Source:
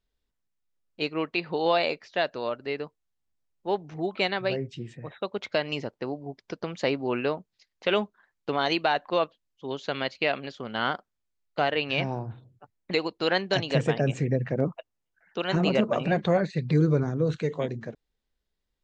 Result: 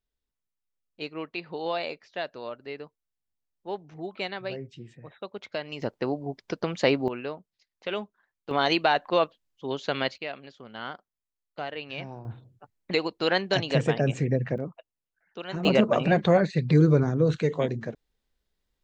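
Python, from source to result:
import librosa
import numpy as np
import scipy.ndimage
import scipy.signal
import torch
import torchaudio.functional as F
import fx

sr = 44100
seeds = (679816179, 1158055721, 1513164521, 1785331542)

y = fx.gain(x, sr, db=fx.steps((0.0, -6.5), (5.82, 4.0), (7.08, -7.0), (8.51, 2.0), (10.18, -9.5), (12.25, 0.5), (14.58, -8.0), (15.65, 3.0)))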